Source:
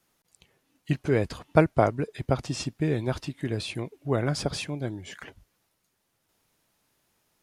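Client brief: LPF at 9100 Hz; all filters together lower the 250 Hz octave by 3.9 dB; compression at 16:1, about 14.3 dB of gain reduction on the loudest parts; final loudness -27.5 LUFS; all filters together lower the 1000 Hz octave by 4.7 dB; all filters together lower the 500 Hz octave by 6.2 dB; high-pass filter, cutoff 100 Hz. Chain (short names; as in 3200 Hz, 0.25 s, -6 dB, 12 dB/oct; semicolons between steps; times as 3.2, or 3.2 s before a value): HPF 100 Hz; LPF 9100 Hz; bell 250 Hz -3 dB; bell 500 Hz -6 dB; bell 1000 Hz -4 dB; compressor 16:1, threshold -31 dBFS; gain +11 dB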